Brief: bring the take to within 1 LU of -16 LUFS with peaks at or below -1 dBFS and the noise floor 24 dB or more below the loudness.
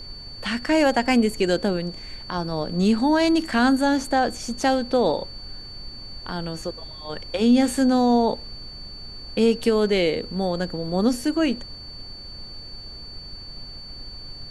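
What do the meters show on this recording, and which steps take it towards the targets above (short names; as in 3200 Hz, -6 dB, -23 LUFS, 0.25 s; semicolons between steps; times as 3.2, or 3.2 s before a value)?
steady tone 4500 Hz; tone level -38 dBFS; noise floor -39 dBFS; noise floor target -46 dBFS; loudness -22.0 LUFS; peak -7.5 dBFS; loudness target -16.0 LUFS
-> notch 4500 Hz, Q 30; noise print and reduce 7 dB; gain +6 dB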